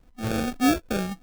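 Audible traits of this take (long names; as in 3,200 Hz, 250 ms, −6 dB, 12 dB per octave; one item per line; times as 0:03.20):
a buzz of ramps at a fixed pitch in blocks of 8 samples
phaser sweep stages 12, 3.4 Hz, lowest notch 500–1,500 Hz
aliases and images of a low sample rate 1,000 Hz, jitter 0%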